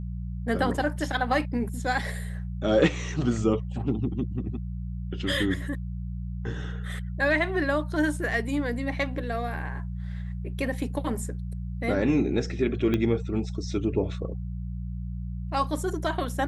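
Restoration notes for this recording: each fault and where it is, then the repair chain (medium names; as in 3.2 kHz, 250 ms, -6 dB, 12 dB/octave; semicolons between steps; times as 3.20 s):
hum 60 Hz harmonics 3 -33 dBFS
12.94 s: pop -15 dBFS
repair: de-click; de-hum 60 Hz, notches 3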